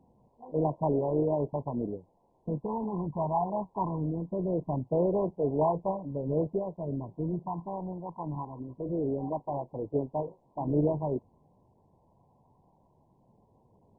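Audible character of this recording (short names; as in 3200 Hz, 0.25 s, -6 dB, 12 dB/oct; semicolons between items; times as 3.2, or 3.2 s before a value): phasing stages 8, 0.22 Hz, lowest notch 430–2500 Hz; a quantiser's noise floor 10-bit, dither triangular; MP2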